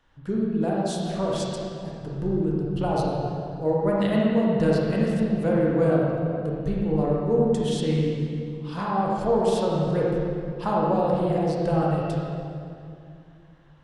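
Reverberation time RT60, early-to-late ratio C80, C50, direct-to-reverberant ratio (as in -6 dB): 2.4 s, -0.5 dB, -3.0 dB, -4.5 dB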